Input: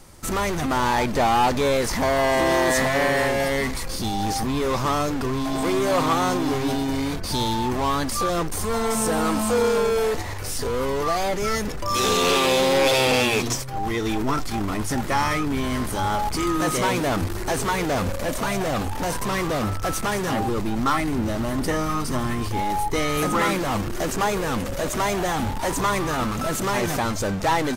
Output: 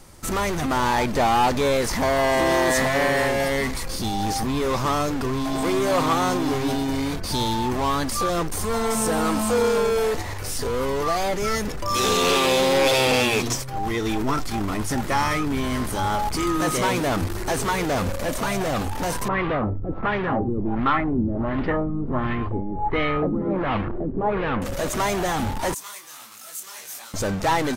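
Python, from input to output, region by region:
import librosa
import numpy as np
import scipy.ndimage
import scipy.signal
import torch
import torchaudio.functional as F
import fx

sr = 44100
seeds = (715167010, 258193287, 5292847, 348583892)

y = fx.chain(x, sr, fx.lowpass(hz=4000.0, slope=24),
    fx.filter_lfo_lowpass(shape='sine', hz=1.4, low_hz=280.0, high_hz=2800.0, q=1.3), at=(19.28, 24.62))
y = fx.chain(y, sr, fx.differentiator(),
    fx.detune_double(cents=56), at=(25.74, 27.14))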